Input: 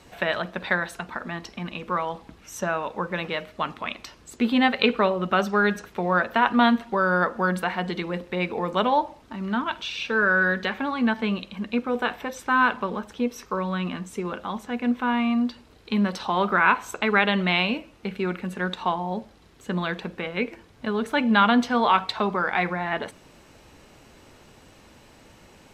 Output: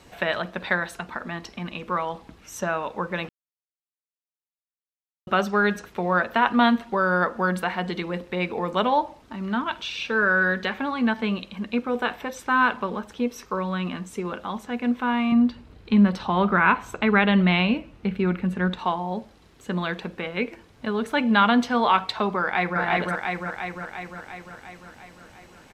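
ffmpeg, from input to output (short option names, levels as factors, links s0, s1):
-filter_complex "[0:a]asettb=1/sr,asplit=3[s0][s1][s2];[s0]atrim=end=15.324[s3];[s1]atrim=start=15.32:end=18.79,asetpts=PTS-STARTPTS,afade=t=in:d=0.004:c=qsin,afade=t=out:st=3.466:d=0.004:c=qsin,bass=f=250:g=9,treble=f=4000:g=-7[s4];[s2]atrim=start=18.786[s5];[s3][s4]acrossfade=d=0.004:c1=hsin:c2=qsin[s6];[s6][s5]acrossfade=d=0.004:c1=qsin:c2=hsin,asplit=2[s7][s8];[s8]afade=t=in:st=22.4:d=0.01,afade=t=out:st=22.8:d=0.01,aecho=0:1:350|700|1050|1400|1750|2100|2450|2800|3150|3500|3850:0.944061|0.61364|0.398866|0.259263|0.168521|0.109538|0.0712|0.04628|0.030082|0.0195533|0.0127096[s9];[s7][s9]amix=inputs=2:normalize=0,asplit=3[s10][s11][s12];[s10]atrim=end=3.29,asetpts=PTS-STARTPTS,afade=t=out:st=3.286:d=0.004:c=hsin[s13];[s11]atrim=start=3.29:end=5.27,asetpts=PTS-STARTPTS,volume=0[s14];[s12]atrim=start=5.27,asetpts=PTS-STARTPTS,afade=t=in:d=0.004:c=hsin[s15];[s13][s14][s15]concat=n=3:v=0:a=1"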